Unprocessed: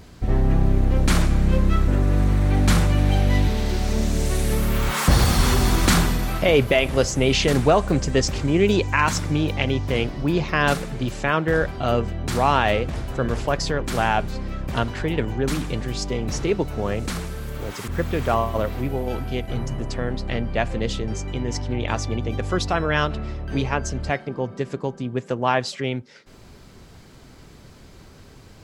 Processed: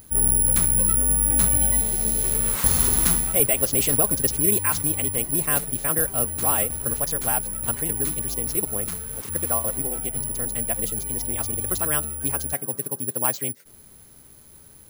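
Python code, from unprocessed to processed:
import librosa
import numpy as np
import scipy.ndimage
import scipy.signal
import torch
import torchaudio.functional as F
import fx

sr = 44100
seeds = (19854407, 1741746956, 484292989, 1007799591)

y = fx.stretch_vocoder(x, sr, factor=0.52)
y = (np.kron(y[::4], np.eye(4)[0]) * 4)[:len(y)]
y = F.gain(torch.from_numpy(y), -7.0).numpy()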